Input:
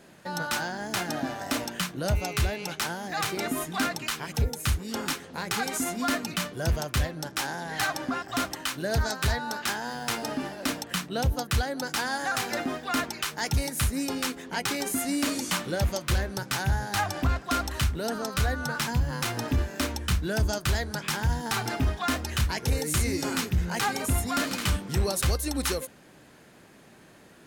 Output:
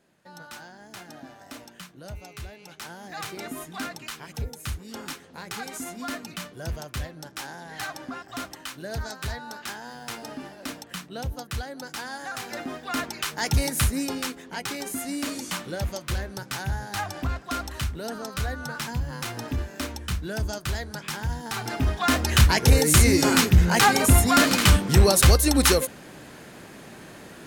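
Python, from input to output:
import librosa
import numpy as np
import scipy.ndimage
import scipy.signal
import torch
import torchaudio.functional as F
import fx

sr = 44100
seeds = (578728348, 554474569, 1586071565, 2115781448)

y = fx.gain(x, sr, db=fx.line((2.62, -13.0), (3.04, -6.0), (12.36, -6.0), (13.71, 5.0), (14.45, -3.0), (21.53, -3.0), (22.36, 9.5)))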